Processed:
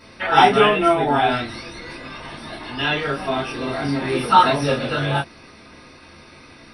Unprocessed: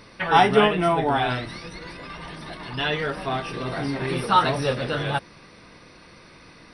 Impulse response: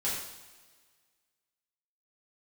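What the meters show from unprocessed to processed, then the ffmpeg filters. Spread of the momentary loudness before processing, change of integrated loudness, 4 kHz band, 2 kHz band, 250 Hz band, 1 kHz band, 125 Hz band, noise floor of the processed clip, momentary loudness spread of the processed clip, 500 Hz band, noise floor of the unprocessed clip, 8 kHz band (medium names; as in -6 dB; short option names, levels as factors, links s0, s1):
19 LU, +4.0 dB, +4.0 dB, +4.0 dB, +3.5 dB, +4.5 dB, +1.5 dB, -46 dBFS, 20 LU, +3.5 dB, -49 dBFS, +4.0 dB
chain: -filter_complex "[1:a]atrim=start_sample=2205,atrim=end_sample=3969,asetrate=70560,aresample=44100[s0];[0:a][s0]afir=irnorm=-1:irlink=0,volume=1.41"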